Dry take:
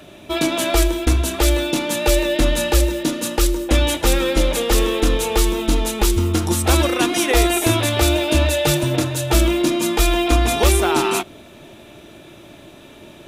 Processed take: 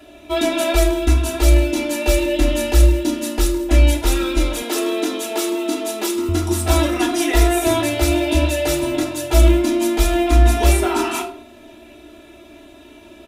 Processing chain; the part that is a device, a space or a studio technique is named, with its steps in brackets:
microphone above a desk (comb filter 3 ms, depth 88%; convolution reverb RT60 0.50 s, pre-delay 4 ms, DRR 1 dB)
0:04.62–0:06.29: high-pass filter 200 Hz 24 dB per octave
level −7 dB

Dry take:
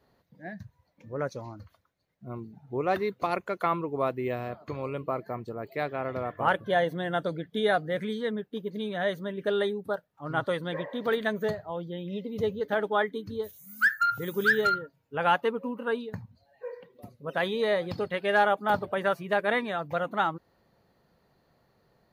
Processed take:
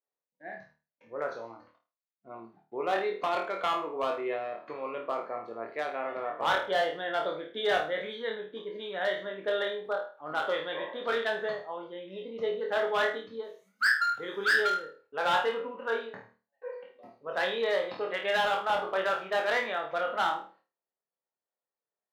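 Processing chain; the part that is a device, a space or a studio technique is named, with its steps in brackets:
peak hold with a decay on every bin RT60 0.34 s
walkie-talkie (band-pass filter 440–2,900 Hz; hard clipping −21 dBFS, distortion −12 dB; noise gate −60 dBFS, range −28 dB)
dynamic equaliser 3,400 Hz, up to +6 dB, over −52 dBFS, Q 2.5
high-pass filter 51 Hz
flutter between parallel walls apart 4.5 metres, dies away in 0.32 s
level −2 dB

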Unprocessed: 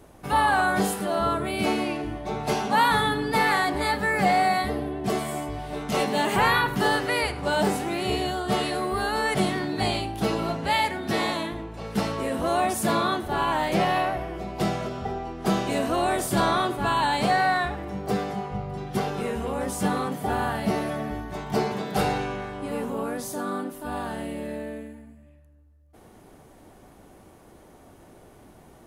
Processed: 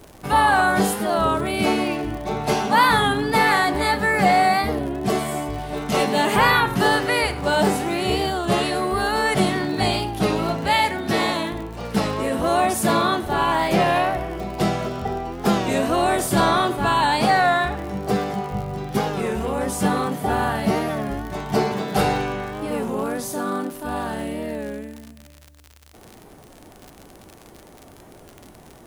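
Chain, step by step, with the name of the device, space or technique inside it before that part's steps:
warped LP (wow of a warped record 33 1/3 rpm, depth 100 cents; surface crackle 71 per second −34 dBFS; white noise bed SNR 45 dB)
level +4.5 dB

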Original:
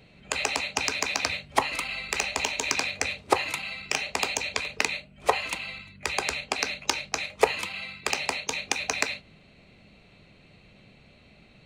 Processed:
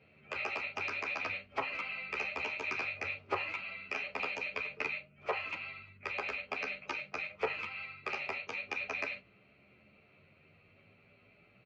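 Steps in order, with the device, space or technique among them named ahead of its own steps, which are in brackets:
barber-pole flanger into a guitar amplifier (barber-pole flanger 11 ms +0.4 Hz; soft clipping −21 dBFS, distortion −10 dB; loudspeaker in its box 86–4,400 Hz, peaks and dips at 96 Hz +6 dB, 400 Hz +5 dB, 580 Hz +4 dB, 1,300 Hz +9 dB, 2,400 Hz +8 dB, 3,800 Hz −9 dB)
level −8 dB

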